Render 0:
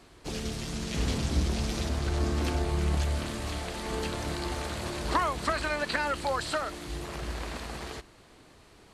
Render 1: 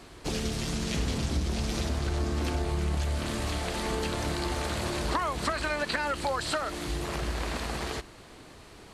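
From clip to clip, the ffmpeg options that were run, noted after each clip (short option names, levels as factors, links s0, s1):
-af "acompressor=threshold=0.02:ratio=3,volume=2"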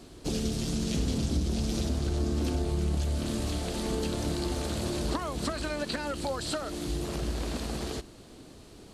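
-af "equalizer=f=250:t=o:w=1:g=4,equalizer=f=1000:t=o:w=1:g=-6,equalizer=f=2000:t=o:w=1:g=-8"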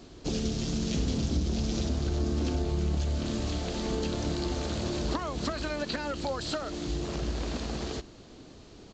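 -af "aresample=16000,aresample=44100"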